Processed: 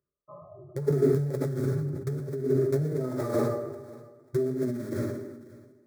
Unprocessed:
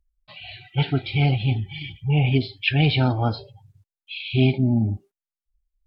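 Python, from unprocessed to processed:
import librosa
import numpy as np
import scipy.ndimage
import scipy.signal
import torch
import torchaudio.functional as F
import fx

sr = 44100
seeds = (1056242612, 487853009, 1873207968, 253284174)

p1 = fx.brickwall_lowpass(x, sr, high_hz=1300.0)
p2 = p1 + 0.55 * np.pad(p1, (int(4.9 * sr / 1000.0), 0))[:len(p1)]
p3 = np.where(np.abs(p2) >= 10.0 ** (-24.5 / 20.0), p2, 0.0)
p4 = p2 + (p3 * 10.0 ** (-7.0 / 20.0))
p5 = fx.rev_plate(p4, sr, seeds[0], rt60_s=0.85, hf_ratio=0.8, predelay_ms=0, drr_db=-1.5)
p6 = fx.over_compress(p5, sr, threshold_db=-23.0, ratio=-1.0)
p7 = scipy.signal.sosfilt(scipy.signal.butter(4, 150.0, 'highpass', fs=sr, output='sos'), p6)
p8 = fx.peak_eq(p7, sr, hz=980.0, db=-11.5, octaves=0.62)
p9 = fx.fixed_phaser(p8, sr, hz=770.0, stages=6)
p10 = p9 + fx.echo_feedback(p9, sr, ms=540, feedback_pct=29, wet_db=-20, dry=0)
y = fx.sustainer(p10, sr, db_per_s=47.0)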